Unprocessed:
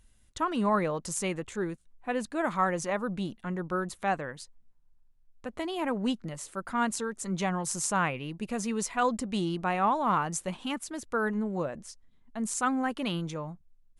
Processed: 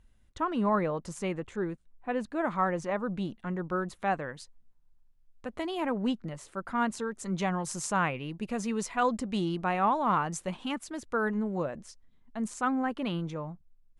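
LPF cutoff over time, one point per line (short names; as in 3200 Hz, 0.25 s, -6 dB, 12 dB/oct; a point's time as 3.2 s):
LPF 6 dB/oct
1900 Hz
from 3.17 s 3100 Hz
from 4.22 s 6300 Hz
from 5.86 s 2800 Hz
from 7.17 s 4800 Hz
from 12.48 s 2100 Hz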